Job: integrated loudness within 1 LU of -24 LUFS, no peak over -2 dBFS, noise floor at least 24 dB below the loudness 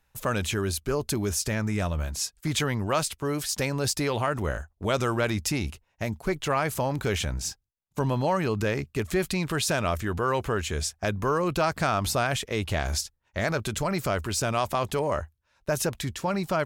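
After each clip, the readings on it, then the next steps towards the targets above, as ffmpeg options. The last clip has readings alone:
loudness -28.0 LUFS; peak level -13.0 dBFS; loudness target -24.0 LUFS
-> -af "volume=1.58"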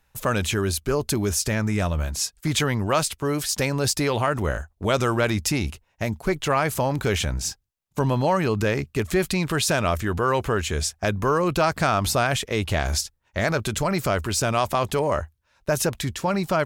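loudness -24.0 LUFS; peak level -9.0 dBFS; noise floor -68 dBFS

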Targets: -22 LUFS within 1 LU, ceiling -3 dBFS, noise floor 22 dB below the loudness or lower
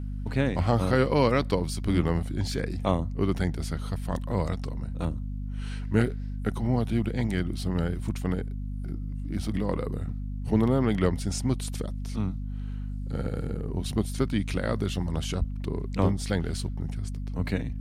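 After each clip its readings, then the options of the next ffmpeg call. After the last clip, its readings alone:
hum 50 Hz; highest harmonic 250 Hz; hum level -30 dBFS; loudness -29.0 LUFS; peak level -9.0 dBFS; loudness target -22.0 LUFS
-> -af "bandreject=f=50:t=h:w=4,bandreject=f=100:t=h:w=4,bandreject=f=150:t=h:w=4,bandreject=f=200:t=h:w=4,bandreject=f=250:t=h:w=4"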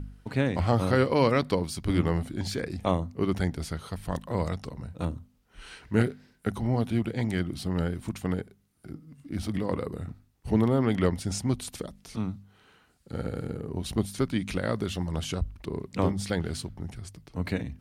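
hum not found; loudness -29.5 LUFS; peak level -9.5 dBFS; loudness target -22.0 LUFS
-> -af "volume=2.37,alimiter=limit=0.708:level=0:latency=1"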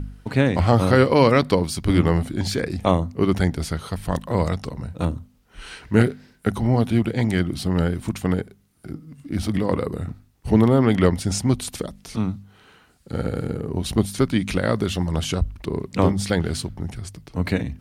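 loudness -22.0 LUFS; peak level -3.0 dBFS; noise floor -57 dBFS

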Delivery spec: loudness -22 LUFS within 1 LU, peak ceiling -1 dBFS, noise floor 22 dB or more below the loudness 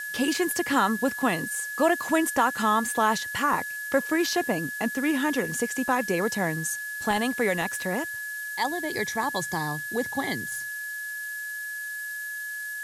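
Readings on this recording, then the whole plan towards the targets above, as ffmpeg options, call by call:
steady tone 1.7 kHz; tone level -32 dBFS; noise floor -35 dBFS; noise floor target -49 dBFS; loudness -27.0 LUFS; peak level -10.5 dBFS; loudness target -22.0 LUFS
-> -af "bandreject=f=1700:w=30"
-af "afftdn=nr=14:nf=-35"
-af "volume=1.78"

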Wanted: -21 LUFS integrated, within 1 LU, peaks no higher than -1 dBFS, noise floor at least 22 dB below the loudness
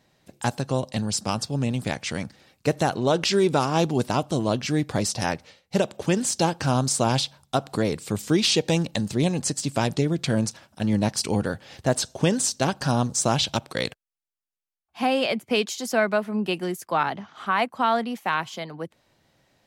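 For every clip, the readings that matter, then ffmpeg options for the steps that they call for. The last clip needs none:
loudness -25.0 LUFS; peak level -9.5 dBFS; loudness target -21.0 LUFS
-> -af "volume=1.58"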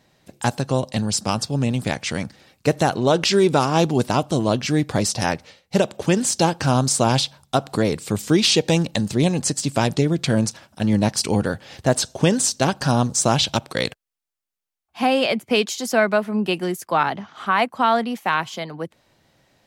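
loudness -21.0 LUFS; peak level -5.5 dBFS; noise floor -75 dBFS

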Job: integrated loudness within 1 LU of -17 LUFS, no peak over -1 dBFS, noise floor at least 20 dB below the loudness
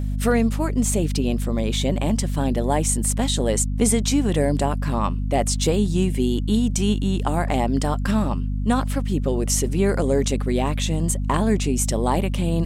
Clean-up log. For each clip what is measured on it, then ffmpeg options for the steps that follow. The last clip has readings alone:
hum 50 Hz; highest harmonic 250 Hz; hum level -22 dBFS; loudness -22.0 LUFS; peak level -6.0 dBFS; loudness target -17.0 LUFS
-> -af "bandreject=f=50:t=h:w=6,bandreject=f=100:t=h:w=6,bandreject=f=150:t=h:w=6,bandreject=f=200:t=h:w=6,bandreject=f=250:t=h:w=6"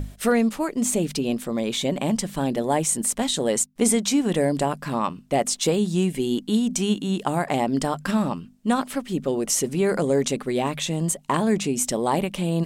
hum not found; loudness -23.5 LUFS; peak level -8.0 dBFS; loudness target -17.0 LUFS
-> -af "volume=2.11"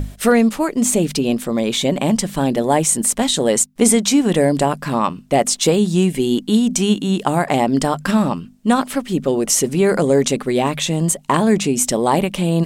loudness -17.0 LUFS; peak level -1.5 dBFS; noise floor -41 dBFS

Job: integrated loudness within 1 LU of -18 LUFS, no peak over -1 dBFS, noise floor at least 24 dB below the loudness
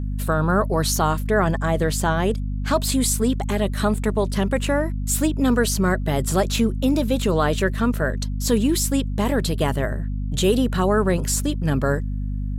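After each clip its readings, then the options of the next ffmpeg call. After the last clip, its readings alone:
hum 50 Hz; highest harmonic 250 Hz; hum level -23 dBFS; loudness -21.5 LUFS; peak level -6.5 dBFS; loudness target -18.0 LUFS
-> -af "bandreject=f=50:t=h:w=6,bandreject=f=100:t=h:w=6,bandreject=f=150:t=h:w=6,bandreject=f=200:t=h:w=6,bandreject=f=250:t=h:w=6"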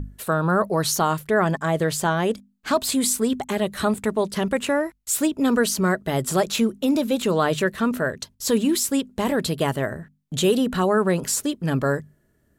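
hum not found; loudness -22.5 LUFS; peak level -8.0 dBFS; loudness target -18.0 LUFS
-> -af "volume=1.68"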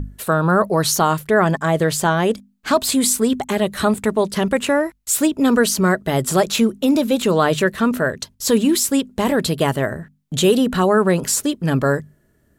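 loudness -18.0 LUFS; peak level -3.5 dBFS; noise floor -61 dBFS

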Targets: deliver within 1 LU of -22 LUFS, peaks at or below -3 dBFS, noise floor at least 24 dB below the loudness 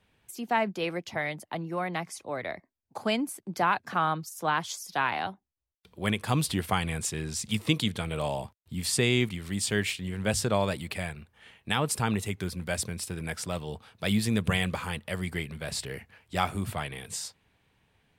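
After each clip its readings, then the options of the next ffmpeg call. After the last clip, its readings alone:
loudness -30.5 LUFS; peak level -10.5 dBFS; loudness target -22.0 LUFS
-> -af "volume=2.66,alimiter=limit=0.708:level=0:latency=1"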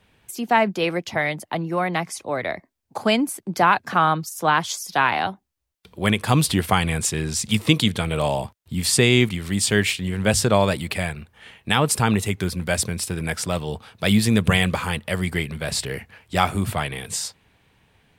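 loudness -22.0 LUFS; peak level -3.0 dBFS; noise floor -66 dBFS

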